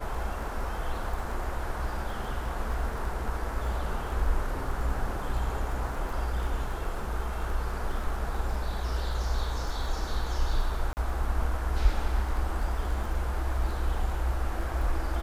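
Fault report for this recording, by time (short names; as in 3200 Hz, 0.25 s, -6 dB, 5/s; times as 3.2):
crackle 21/s -36 dBFS
10.93–10.97 gap 39 ms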